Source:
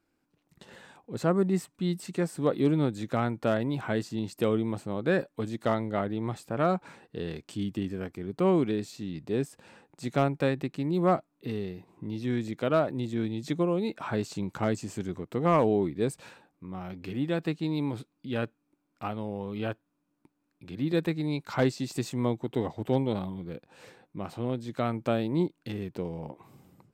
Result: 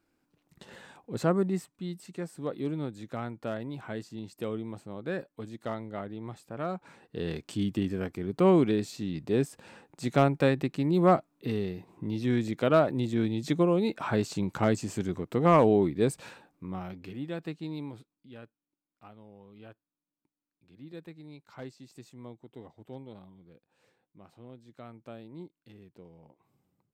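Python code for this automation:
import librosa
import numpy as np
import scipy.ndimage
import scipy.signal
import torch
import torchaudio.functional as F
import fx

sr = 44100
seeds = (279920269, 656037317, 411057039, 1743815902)

y = fx.gain(x, sr, db=fx.line((1.2, 1.0), (1.89, -8.0), (6.73, -8.0), (7.3, 2.5), (16.72, 2.5), (17.17, -7.0), (17.74, -7.0), (18.42, -17.5)))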